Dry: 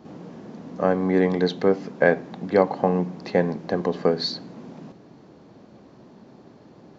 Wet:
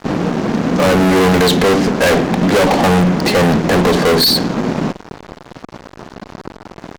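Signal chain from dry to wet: fuzz box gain 37 dB, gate -45 dBFS; gain +3.5 dB

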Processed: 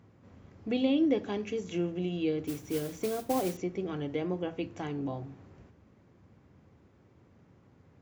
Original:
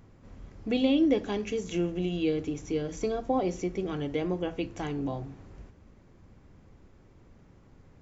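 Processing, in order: HPF 77 Hz 24 dB/oct; high shelf 6300 Hz -8.5 dB; 2.47–3.57 modulation noise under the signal 13 dB; gain -2.5 dB

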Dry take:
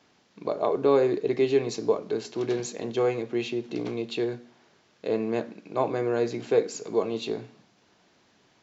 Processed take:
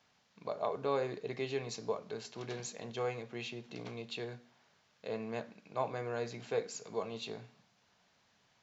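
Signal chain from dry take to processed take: bell 330 Hz -13 dB 0.85 oct; gain -6.5 dB

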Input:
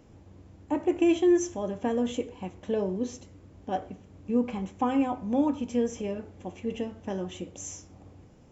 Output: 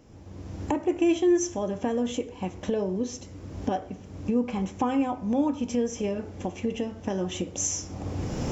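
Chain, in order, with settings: recorder AGC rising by 26 dB/s; bell 5500 Hz +5.5 dB 0.45 oct

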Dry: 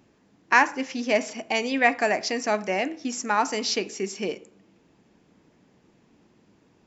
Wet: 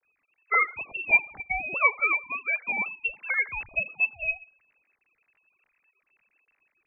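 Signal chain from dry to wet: sine-wave speech; inverted band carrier 3000 Hz; gain -2.5 dB

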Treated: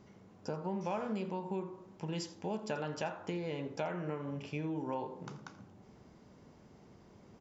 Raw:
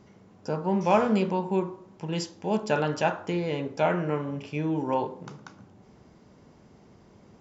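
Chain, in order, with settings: compressor 4:1, threshold -31 dBFS, peak gain reduction 13 dB; on a send: echo 84 ms -17 dB; on the sum: gain -4 dB

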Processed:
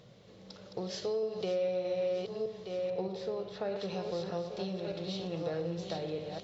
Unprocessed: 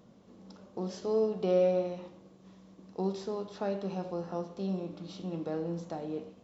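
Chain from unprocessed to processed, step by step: regenerating reverse delay 0.615 s, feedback 44%, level -5.5 dB; 2.9–3.76 high shelf 2700 Hz -11.5 dB; compressor 6:1, threshold -33 dBFS, peak gain reduction 11 dB; ten-band EQ 125 Hz +10 dB, 250 Hz -11 dB, 500 Hz +7 dB, 1000 Hz -4 dB, 2000 Hz +7 dB, 4000 Hz +10 dB

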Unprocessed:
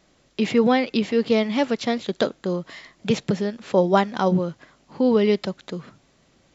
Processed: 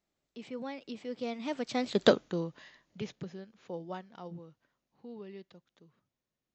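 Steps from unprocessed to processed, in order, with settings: Doppler pass-by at 2.06, 23 m/s, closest 2.8 m

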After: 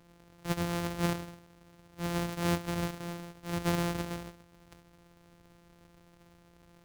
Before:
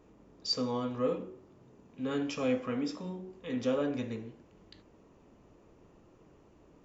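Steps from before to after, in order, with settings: sample sorter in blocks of 256 samples

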